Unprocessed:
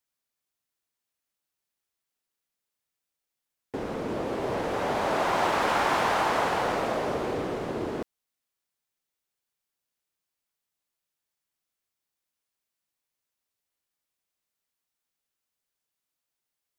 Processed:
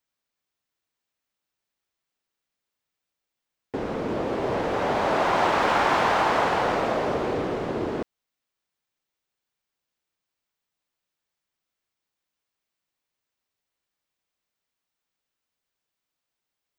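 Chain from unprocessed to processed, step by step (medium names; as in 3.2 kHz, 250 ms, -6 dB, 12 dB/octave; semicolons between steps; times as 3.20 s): peaking EQ 12 kHz -11 dB 1.1 oct; trim +3.5 dB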